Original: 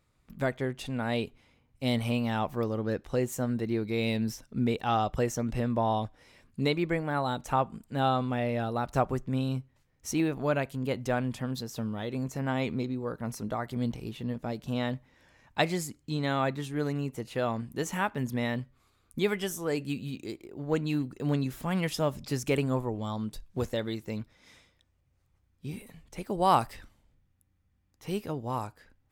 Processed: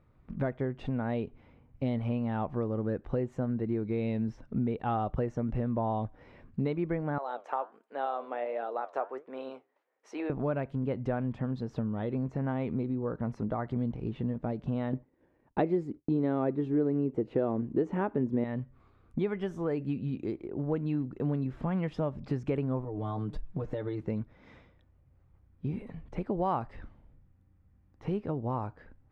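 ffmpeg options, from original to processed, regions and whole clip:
-filter_complex "[0:a]asettb=1/sr,asplit=3[s0][s1][s2];[s0]atrim=end=7.184[s3];[s1]atrim=start=7.18:end=10.3,asetpts=PTS-STARTPTS,afade=t=in:d=0.004:c=qsin,afade=t=out:st=3.116:d=0.004:c=qsin,flanger=delay=3.9:depth=8.9:regen=74:speed=1.4:shape=triangular,highpass=f=440:w=0.5412,highpass=f=440:w=1.3066[s4];[s2]atrim=start=10.296[s5];[s3][s4]acrossfade=d=0.004:c1=hsin:c2=qsin[s6];[s6][s5]acrossfade=d=0.004:c1=qsin:c2=hsin,asettb=1/sr,asplit=3[s7][s8][s9];[s7]atrim=end=14.934[s10];[s8]atrim=start=14.93:end=18.44,asetpts=PTS-STARTPTS,afade=t=in:d=0.004:c=qsin,afade=t=out:st=3.506:d=0.004:c=qsin,equalizer=f=360:w=0.97:g=14,agate=range=0.0224:threshold=0.00501:ratio=3:release=100:detection=peak[s11];[s9]atrim=start=18.436[s12];[s10][s11]acrossfade=d=0.004:c1=hsin:c2=qsin[s13];[s13][s12]acrossfade=d=0.004:c1=qsin:c2=hsin,asettb=1/sr,asplit=3[s14][s15][s16];[s14]atrim=end=22.844[s17];[s15]atrim=start=22.84:end=24.01,asetpts=PTS-STARTPTS,afade=t=in:d=0.004:c=qsin,afade=t=out:st=1.166:d=0.004:c=qsin,aecho=1:1:6.6:0.86,atrim=end_sample=51597,acompressor=threshold=0.0158:ratio=5:attack=3.2:release=140:knee=1:detection=peak[s18];[s16]atrim=start=24.006[s19];[s17][s18]acrossfade=d=0.004:c1=hsin:c2=qsin[s20];[s20][s19]acrossfade=d=0.004:c1=qsin:c2=hsin,lowpass=1400,equalizer=f=1100:t=o:w=2.3:g=-3,acompressor=threshold=0.0112:ratio=3,volume=2.66"

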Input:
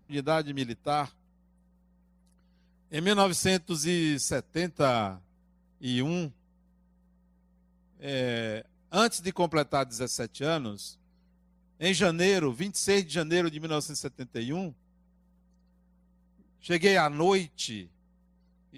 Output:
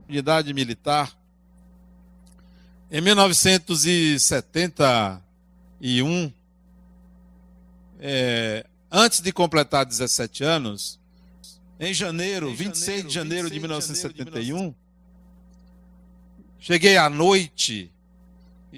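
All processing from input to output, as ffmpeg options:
-filter_complex "[0:a]asettb=1/sr,asplit=3[s0][s1][s2];[s0]atrim=end=10.814[s3];[s1]atrim=start=10.81:end=14.6,asetpts=PTS-STARTPTS,afade=t=in:d=0.004:c=qsin,afade=t=out:st=3.786:d=0.004:c=qsin,acompressor=threshold=0.0355:ratio=12:attack=3.2:release=140:knee=1:detection=peak,aecho=1:1:628:0.224,atrim=end_sample=167139[s4];[s2]atrim=start=14.596[s5];[s3][s4]acrossfade=d=0.004:c1=hsin:c2=qsin[s6];[s6][s5]acrossfade=d=0.004:c1=qsin:c2=hsin,acompressor=mode=upward:threshold=0.00398:ratio=2.5,adynamicequalizer=threshold=0.00891:dfrequency=2100:dqfactor=0.7:tfrequency=2100:tqfactor=0.7:attack=5:release=100:ratio=0.375:range=3:mode=boostabove:tftype=highshelf,volume=2.11"

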